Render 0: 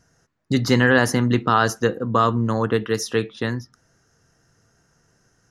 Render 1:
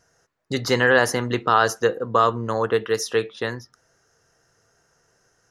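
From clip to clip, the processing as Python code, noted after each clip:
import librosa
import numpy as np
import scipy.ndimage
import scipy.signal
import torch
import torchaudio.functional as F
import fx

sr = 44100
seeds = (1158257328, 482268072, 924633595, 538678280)

y = fx.low_shelf_res(x, sr, hz=340.0, db=-7.0, q=1.5)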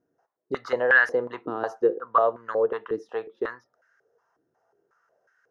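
y = fx.filter_held_bandpass(x, sr, hz=5.5, low_hz=300.0, high_hz=1600.0)
y = y * librosa.db_to_amplitude(4.5)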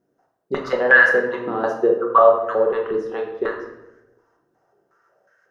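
y = fx.room_shoebox(x, sr, seeds[0], volume_m3=330.0, walls='mixed', distance_m=1.1)
y = y * librosa.db_to_amplitude(3.5)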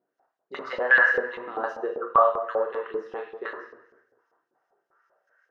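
y = fx.filter_lfo_bandpass(x, sr, shape='saw_up', hz=5.1, low_hz=660.0, high_hz=3700.0, q=0.91)
y = y * librosa.db_to_amplitude(-2.5)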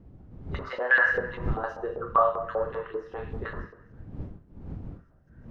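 y = fx.dmg_wind(x, sr, seeds[1], corner_hz=150.0, level_db=-36.0)
y = y * librosa.db_to_amplitude(-3.0)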